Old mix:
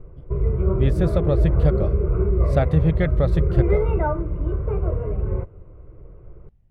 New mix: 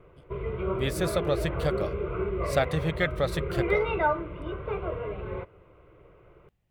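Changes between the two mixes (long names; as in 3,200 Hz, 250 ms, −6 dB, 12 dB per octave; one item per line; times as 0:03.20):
background: remove high-frequency loss of the air 390 metres
master: add spectral tilt +4 dB per octave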